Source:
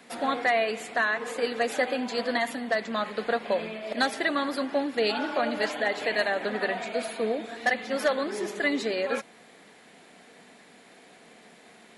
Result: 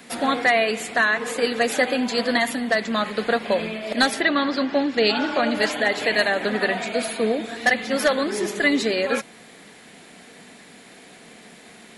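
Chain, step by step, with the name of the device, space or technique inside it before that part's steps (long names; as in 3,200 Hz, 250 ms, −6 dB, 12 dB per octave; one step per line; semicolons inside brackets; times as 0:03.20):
smiley-face EQ (low-shelf EQ 130 Hz +5.5 dB; parametric band 720 Hz −4 dB 2.1 octaves; high-shelf EQ 9,000 Hz +4.5 dB)
0:04.20–0:05.53: low-pass filter 4,500 Hz → 9,100 Hz 24 dB per octave
level +8 dB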